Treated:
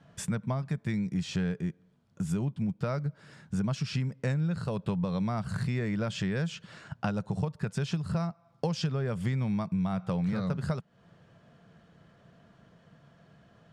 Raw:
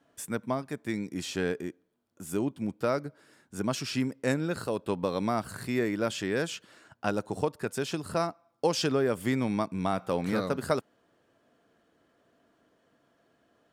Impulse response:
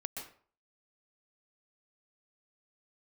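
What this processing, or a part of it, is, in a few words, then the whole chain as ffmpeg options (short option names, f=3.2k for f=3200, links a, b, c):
jukebox: -af "lowpass=6.2k,lowshelf=f=220:t=q:w=3:g=8.5,acompressor=threshold=-36dB:ratio=5,volume=7dB"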